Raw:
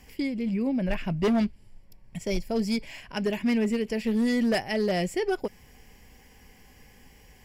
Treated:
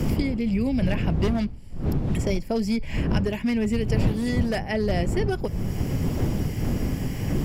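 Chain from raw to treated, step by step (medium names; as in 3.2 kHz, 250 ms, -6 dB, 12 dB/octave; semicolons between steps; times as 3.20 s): wind noise 140 Hz -25 dBFS; three bands compressed up and down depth 100%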